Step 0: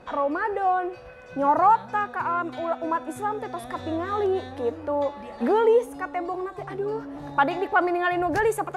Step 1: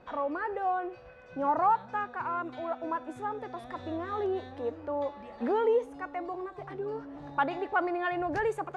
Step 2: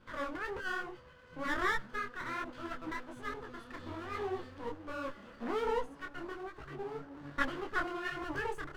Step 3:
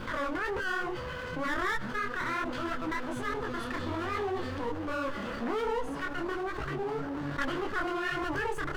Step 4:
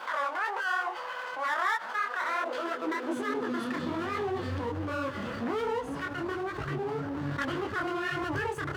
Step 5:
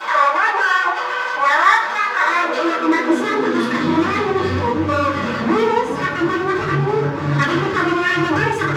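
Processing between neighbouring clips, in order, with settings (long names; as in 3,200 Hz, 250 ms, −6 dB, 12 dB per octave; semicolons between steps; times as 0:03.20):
Bessel low-pass filter 4,800 Hz, order 2; level −7 dB
lower of the sound and its delayed copy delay 0.64 ms; micro pitch shift up and down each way 42 cents
wavefolder on the positive side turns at −24 dBFS; envelope flattener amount 70%; level −1 dB
high-pass filter sweep 800 Hz → 95 Hz, 0:02.04–0:04.58
convolution reverb RT60 0.65 s, pre-delay 3 ms, DRR −12.5 dB; level +3.5 dB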